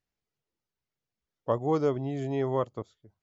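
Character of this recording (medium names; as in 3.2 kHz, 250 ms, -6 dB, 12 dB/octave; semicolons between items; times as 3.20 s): noise floor -90 dBFS; spectral tilt -6.5 dB/octave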